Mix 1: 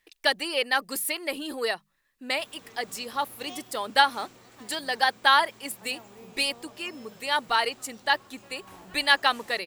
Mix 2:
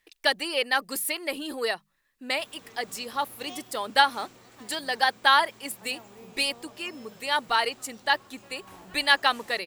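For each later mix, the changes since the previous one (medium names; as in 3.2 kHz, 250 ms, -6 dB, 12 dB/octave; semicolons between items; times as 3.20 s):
no change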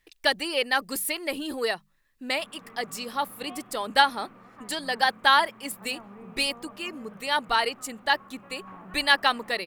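background: add cabinet simulation 190–2300 Hz, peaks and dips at 200 Hz +9 dB, 360 Hz -5 dB, 1.2 kHz +9 dB; master: add bass shelf 160 Hz +11 dB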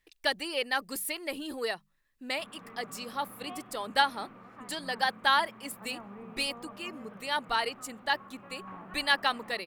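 speech -5.5 dB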